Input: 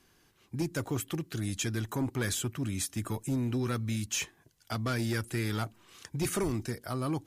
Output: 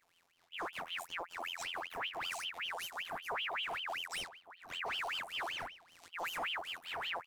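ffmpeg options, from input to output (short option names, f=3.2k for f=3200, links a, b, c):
-filter_complex "[0:a]aeval=exprs='if(lt(val(0),0),0.251*val(0),val(0))':c=same,afftfilt=real='hypot(re,im)*cos(PI*b)':imag='0':win_size=2048:overlap=0.75,flanger=delay=18.5:depth=4.8:speed=0.33,aeval=exprs='clip(val(0),-1,0.0188)':c=same,acrusher=bits=8:mode=log:mix=0:aa=0.000001,asplit=2[a][b];[b]adelay=1516,volume=-12dB,highshelf=f=4k:g=-34.1[c];[a][c]amix=inputs=2:normalize=0,aeval=exprs='val(0)*sin(2*PI*1900*n/s+1900*0.65/5.2*sin(2*PI*5.2*n/s))':c=same,volume=2.5dB"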